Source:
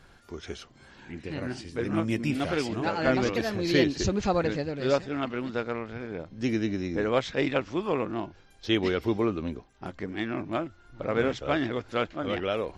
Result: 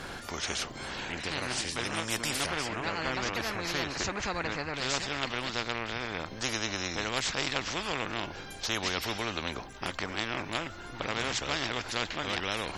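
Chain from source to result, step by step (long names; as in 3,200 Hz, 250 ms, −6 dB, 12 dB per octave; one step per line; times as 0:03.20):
0:02.46–0:04.74: high shelf with overshoot 2,300 Hz −13 dB, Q 1.5
every bin compressed towards the loudest bin 4 to 1
level −3 dB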